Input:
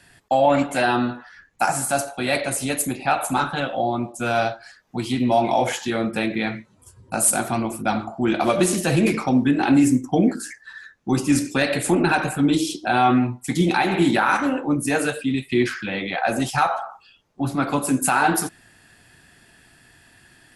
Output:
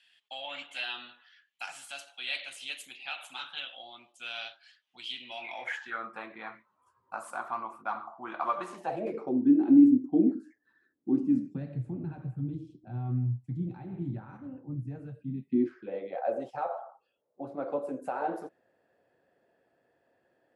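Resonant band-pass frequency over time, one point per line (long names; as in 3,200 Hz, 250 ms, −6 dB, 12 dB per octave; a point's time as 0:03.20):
resonant band-pass, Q 5.2
0:05.26 3,100 Hz
0:06.14 1,100 Hz
0:08.71 1,100 Hz
0:09.44 300 Hz
0:11.14 300 Hz
0:11.84 120 Hz
0:15.16 120 Hz
0:15.97 530 Hz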